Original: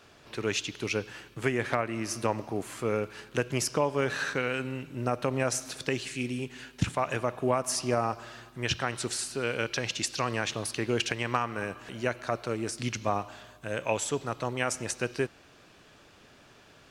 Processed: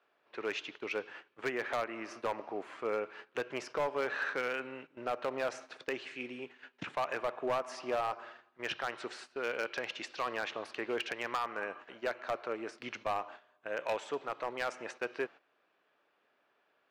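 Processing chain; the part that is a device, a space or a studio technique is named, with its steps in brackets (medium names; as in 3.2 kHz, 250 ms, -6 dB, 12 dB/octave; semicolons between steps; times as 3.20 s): walkie-talkie (band-pass 460–2300 Hz; hard clipper -25.5 dBFS, distortion -11 dB; gate -47 dBFS, range -13 dB); trim -1.5 dB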